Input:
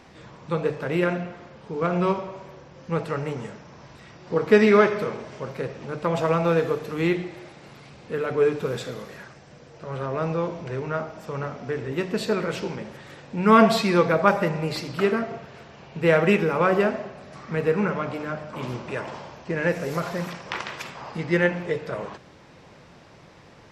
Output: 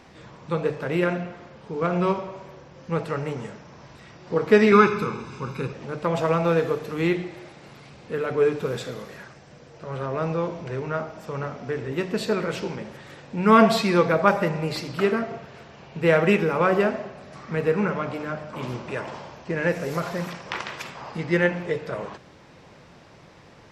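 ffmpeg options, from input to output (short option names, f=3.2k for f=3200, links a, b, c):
-filter_complex "[0:a]asettb=1/sr,asplit=3[a][b][c];[a]atrim=end=4.724[d];[b]atrim=start=4.72:end=5.73,asetpts=PTS-STARTPTS,afade=t=in:d=0.004:c=qsin,afade=t=out:st=1.006:d=0.004:c=qsin,aecho=1:1:0.8:0.86,atrim=end_sample=44541[e];[c]atrim=start=5.726[f];[d][e]acrossfade=d=0.004:c1=hsin:c2=qsin[g];[g][f]acrossfade=d=0.004:c1=qsin:c2=hsin"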